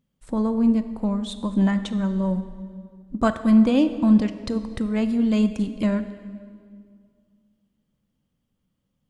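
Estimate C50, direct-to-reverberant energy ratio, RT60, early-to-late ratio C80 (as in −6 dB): 11.5 dB, 10.5 dB, 2.1 s, 12.5 dB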